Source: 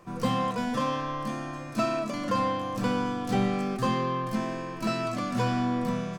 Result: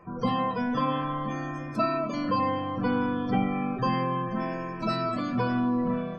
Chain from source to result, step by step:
gate on every frequency bin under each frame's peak −25 dB strong
convolution reverb, pre-delay 3 ms, DRR 3.5 dB

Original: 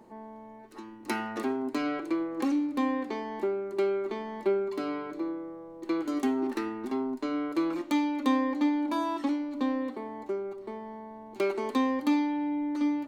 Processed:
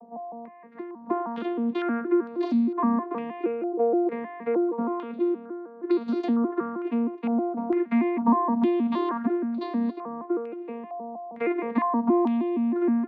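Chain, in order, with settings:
vocoder with an arpeggio as carrier bare fifth, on A#3, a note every 157 ms
in parallel at −2.5 dB: brickwall limiter −24.5 dBFS, peak gain reduction 11 dB
on the sum: low-pass on a step sequencer 2.2 Hz 760–4,200 Hz

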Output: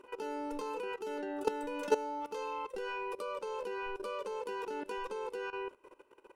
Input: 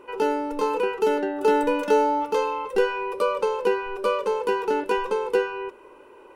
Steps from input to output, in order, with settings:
parametric band 6,900 Hz +5.5 dB 2 octaves
output level in coarse steps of 16 dB
level −6.5 dB

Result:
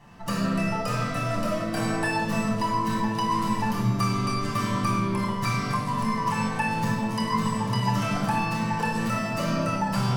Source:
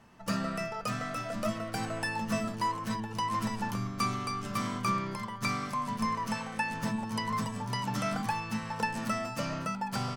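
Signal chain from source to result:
downward compressor, threshold −31 dBFS, peak gain reduction 6.5 dB
convolution reverb RT60 1.4 s, pre-delay 7 ms, DRR −5.5 dB

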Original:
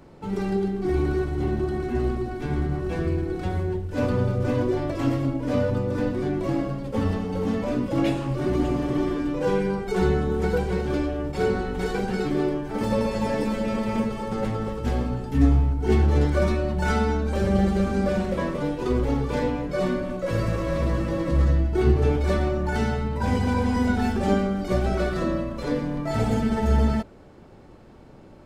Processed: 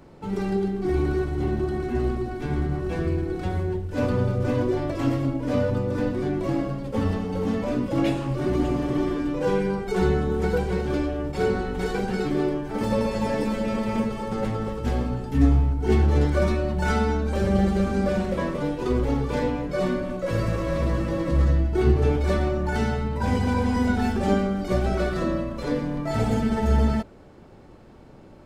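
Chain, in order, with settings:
0:16.29–0:17.71: surface crackle 42 per second −51 dBFS

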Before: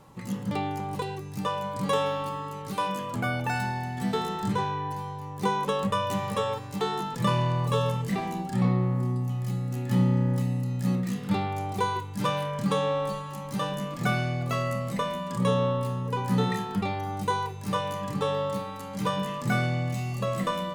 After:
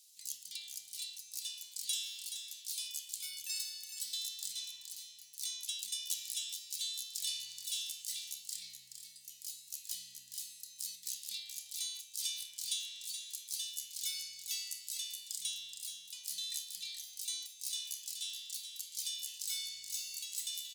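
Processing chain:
inverse Chebyshev high-pass filter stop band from 1,300 Hz, stop band 60 dB
single-tap delay 425 ms −8 dB
level +7.5 dB

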